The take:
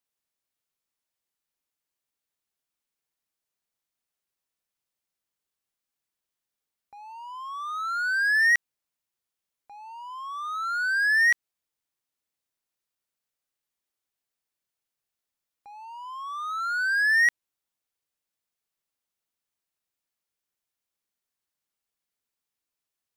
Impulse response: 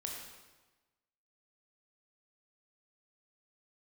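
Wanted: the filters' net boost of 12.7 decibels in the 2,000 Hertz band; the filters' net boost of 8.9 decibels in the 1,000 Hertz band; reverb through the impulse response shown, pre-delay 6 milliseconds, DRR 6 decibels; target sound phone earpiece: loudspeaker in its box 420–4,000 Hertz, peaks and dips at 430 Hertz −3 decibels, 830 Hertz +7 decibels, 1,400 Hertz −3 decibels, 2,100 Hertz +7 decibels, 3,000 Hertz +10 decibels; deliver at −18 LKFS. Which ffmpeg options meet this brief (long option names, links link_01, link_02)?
-filter_complex "[0:a]equalizer=frequency=1000:width_type=o:gain=8,equalizer=frequency=2000:width_type=o:gain=9,asplit=2[link_01][link_02];[1:a]atrim=start_sample=2205,adelay=6[link_03];[link_02][link_03]afir=irnorm=-1:irlink=0,volume=-5.5dB[link_04];[link_01][link_04]amix=inputs=2:normalize=0,highpass=420,equalizer=frequency=430:width_type=q:width=4:gain=-3,equalizer=frequency=830:width_type=q:width=4:gain=7,equalizer=frequency=1400:width_type=q:width=4:gain=-3,equalizer=frequency=2100:width_type=q:width=4:gain=7,equalizer=frequency=3000:width_type=q:width=4:gain=10,lowpass=frequency=4000:width=0.5412,lowpass=frequency=4000:width=1.3066,volume=-8.5dB"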